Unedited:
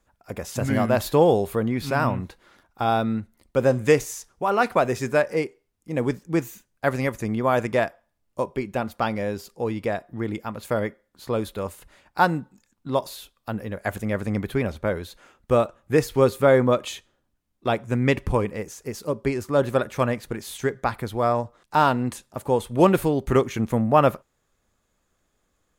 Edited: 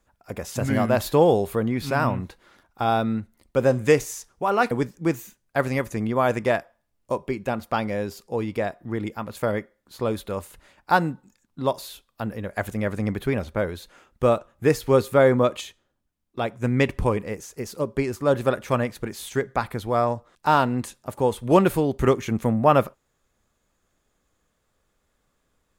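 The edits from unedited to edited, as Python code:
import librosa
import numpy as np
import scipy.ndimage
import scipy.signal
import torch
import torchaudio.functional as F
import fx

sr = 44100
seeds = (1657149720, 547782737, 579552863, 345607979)

y = fx.edit(x, sr, fx.cut(start_s=4.71, length_s=1.28),
    fx.clip_gain(start_s=16.89, length_s=1.01, db=-3.5), tone=tone)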